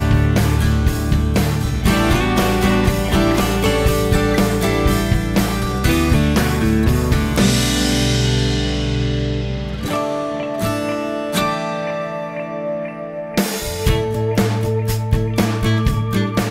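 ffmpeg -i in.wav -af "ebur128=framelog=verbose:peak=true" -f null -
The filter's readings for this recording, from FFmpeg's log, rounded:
Integrated loudness:
  I:         -17.9 LUFS
  Threshold: -27.9 LUFS
Loudness range:
  LRA:         5.4 LU
  Threshold: -38.0 LUFS
  LRA low:   -21.7 LUFS
  LRA high:  -16.3 LUFS
True peak:
  Peak:       -3.6 dBFS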